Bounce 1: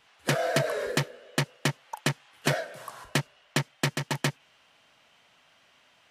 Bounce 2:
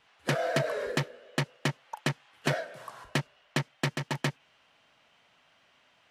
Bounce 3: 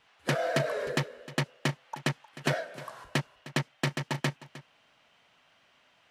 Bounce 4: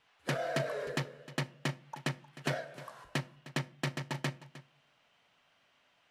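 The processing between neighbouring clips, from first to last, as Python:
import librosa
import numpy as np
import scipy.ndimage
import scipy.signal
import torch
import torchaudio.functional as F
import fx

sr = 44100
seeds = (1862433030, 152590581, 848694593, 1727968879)

y1 = fx.high_shelf(x, sr, hz=6300.0, db=-8.5)
y1 = y1 * 10.0 ** (-2.0 / 20.0)
y2 = y1 + 10.0 ** (-17.0 / 20.0) * np.pad(y1, (int(308 * sr / 1000.0), 0))[:len(y1)]
y3 = fx.room_shoebox(y2, sr, seeds[0], volume_m3=370.0, walls='furnished', distance_m=0.34)
y3 = y3 * 10.0 ** (-5.5 / 20.0)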